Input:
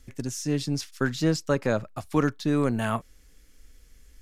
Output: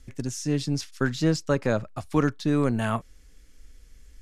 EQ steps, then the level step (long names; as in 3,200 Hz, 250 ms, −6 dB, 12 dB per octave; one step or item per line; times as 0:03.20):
low-pass filter 11,000 Hz 12 dB per octave
low-shelf EQ 140 Hz +3.5 dB
0.0 dB